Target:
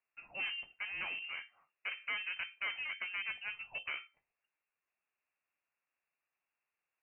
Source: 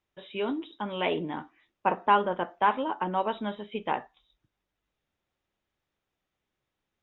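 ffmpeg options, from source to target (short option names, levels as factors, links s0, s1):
-af "highpass=f=330:w=0.5412,highpass=f=330:w=1.3066,alimiter=limit=0.0841:level=0:latency=1:release=283,aeval=exprs='clip(val(0),-1,0.015)':c=same,lowpass=f=2600:t=q:w=0.5098,lowpass=f=2600:t=q:w=0.6013,lowpass=f=2600:t=q:w=0.9,lowpass=f=2600:t=q:w=2.563,afreqshift=-3100,volume=0.596"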